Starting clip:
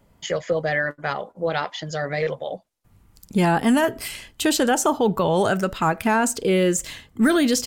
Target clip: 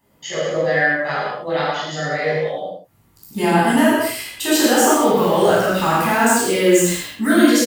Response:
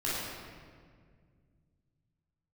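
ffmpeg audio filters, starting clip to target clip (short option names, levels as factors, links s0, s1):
-filter_complex "[0:a]asettb=1/sr,asplit=3[s0][s1][s2];[s0]atrim=end=4.554[s3];[s1]atrim=start=4.55:end=6.93,asetpts=PTS-STARTPTS,afade=t=in:d=0.004:c=qsin,afade=t=out:st=2.376:d=0.004:c=qsin,aeval=exprs='val(0)+0.5*0.0316*sgn(val(0))':c=same[s4];[s2]atrim=start=6.926[s5];[s3][s4]acrossfade=d=0.004:c1=hsin:c2=qsin[s6];[s6][s5]acrossfade=d=0.004:c1=qsin:c2=hsin,highpass=f=260:p=1,highshelf=f=11000:g=11,aecho=1:1:78:0.335[s7];[1:a]atrim=start_sample=2205,afade=t=out:st=0.28:d=0.01,atrim=end_sample=12789[s8];[s7][s8]afir=irnorm=-1:irlink=0,volume=0.75"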